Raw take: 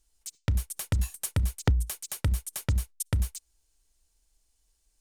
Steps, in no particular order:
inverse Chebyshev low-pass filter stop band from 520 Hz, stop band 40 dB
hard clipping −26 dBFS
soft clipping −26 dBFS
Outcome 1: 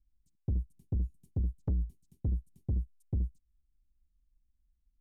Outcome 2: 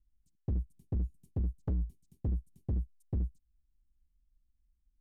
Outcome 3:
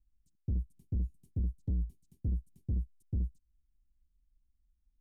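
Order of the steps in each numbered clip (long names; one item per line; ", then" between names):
inverse Chebyshev low-pass filter, then soft clipping, then hard clipping
inverse Chebyshev low-pass filter, then hard clipping, then soft clipping
hard clipping, then inverse Chebyshev low-pass filter, then soft clipping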